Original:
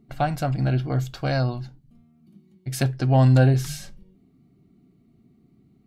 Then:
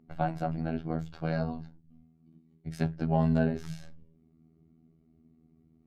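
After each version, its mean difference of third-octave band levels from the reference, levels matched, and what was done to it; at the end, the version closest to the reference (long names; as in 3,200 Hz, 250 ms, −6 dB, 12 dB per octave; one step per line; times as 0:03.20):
4.5 dB: flanger 0.36 Hz, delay 7.9 ms, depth 6.3 ms, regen −51%
phases set to zero 80.7 Hz
low-pass filter 1,200 Hz 6 dB per octave
level +1.5 dB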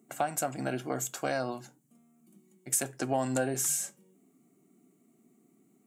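7.5 dB: Bessel high-pass filter 320 Hz, order 4
high shelf with overshoot 5,800 Hz +9.5 dB, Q 3
downward compressor 3 to 1, threshold −27 dBFS, peak gain reduction 7.5 dB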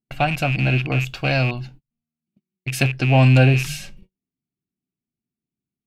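2.5 dB: loose part that buzzes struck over −26 dBFS, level −27 dBFS
noise gate −45 dBFS, range −34 dB
parametric band 2,600 Hz +14 dB 0.45 octaves
level +2.5 dB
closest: third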